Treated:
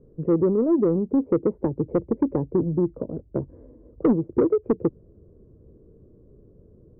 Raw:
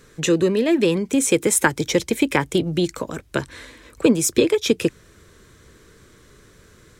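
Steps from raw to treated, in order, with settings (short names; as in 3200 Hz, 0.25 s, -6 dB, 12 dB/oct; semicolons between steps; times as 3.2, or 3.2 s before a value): inverse Chebyshev low-pass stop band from 3300 Hz, stop band 80 dB; soft clip -12 dBFS, distortion -16 dB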